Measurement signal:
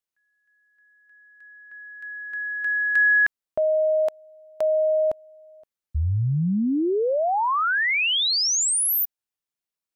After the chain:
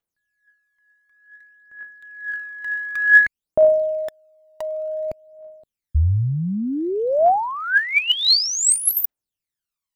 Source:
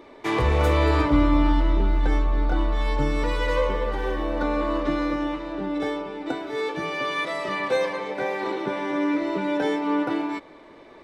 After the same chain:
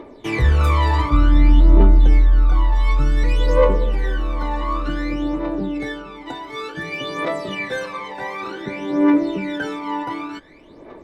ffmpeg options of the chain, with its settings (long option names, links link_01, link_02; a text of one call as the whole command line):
ffmpeg -i in.wav -af "aphaser=in_gain=1:out_gain=1:delay=1.1:decay=0.75:speed=0.55:type=triangular,volume=-1.5dB" out.wav